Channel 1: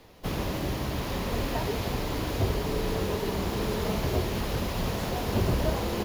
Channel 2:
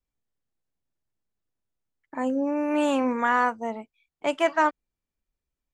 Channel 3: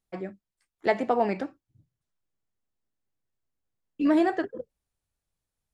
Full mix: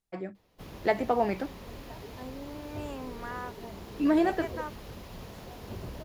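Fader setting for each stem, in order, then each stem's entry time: -14.5 dB, -17.0 dB, -2.0 dB; 0.35 s, 0.00 s, 0.00 s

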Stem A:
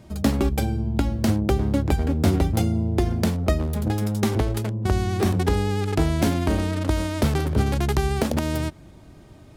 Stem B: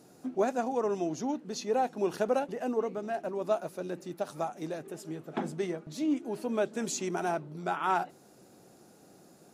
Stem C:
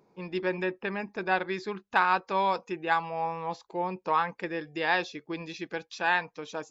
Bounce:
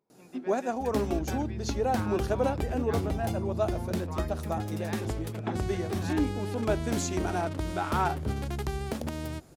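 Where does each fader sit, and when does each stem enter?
-10.5 dB, 0.0 dB, -16.5 dB; 0.70 s, 0.10 s, 0.00 s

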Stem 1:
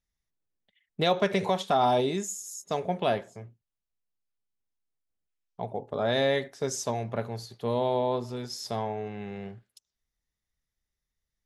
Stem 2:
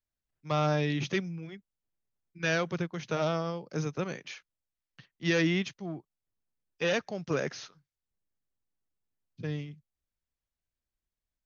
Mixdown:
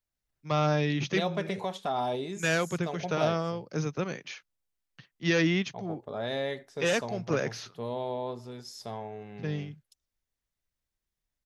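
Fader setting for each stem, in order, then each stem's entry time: -7.0 dB, +1.5 dB; 0.15 s, 0.00 s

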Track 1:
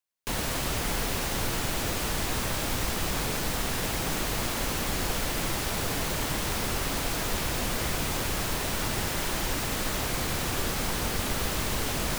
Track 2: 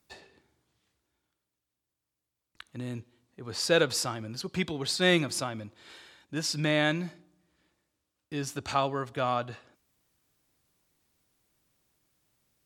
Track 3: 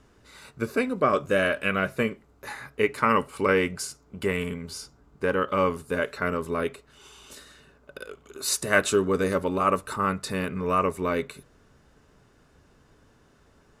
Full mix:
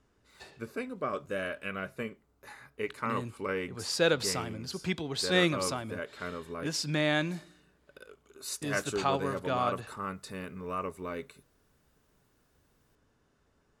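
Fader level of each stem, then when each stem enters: mute, -2.0 dB, -11.5 dB; mute, 0.30 s, 0.00 s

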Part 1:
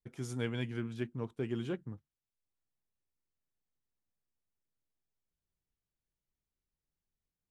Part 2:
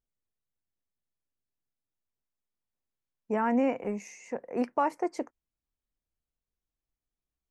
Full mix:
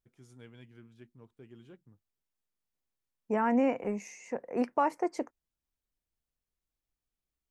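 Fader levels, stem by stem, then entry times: -16.5 dB, -0.5 dB; 0.00 s, 0.00 s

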